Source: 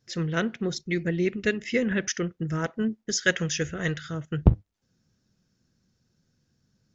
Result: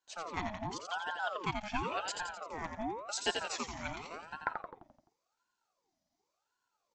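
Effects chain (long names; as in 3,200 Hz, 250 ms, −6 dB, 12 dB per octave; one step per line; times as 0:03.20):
high-pass filter 190 Hz 24 dB per octave
repeating echo 86 ms, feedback 53%, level −6 dB
ring modulator whose carrier an LFO sweeps 830 Hz, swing 50%, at 0.91 Hz
level −8 dB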